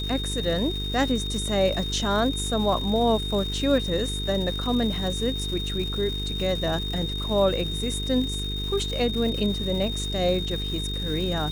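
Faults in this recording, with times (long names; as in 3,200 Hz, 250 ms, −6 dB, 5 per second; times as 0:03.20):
mains buzz 50 Hz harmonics 9 −31 dBFS
surface crackle 480 per second −33 dBFS
whistle 3,700 Hz −31 dBFS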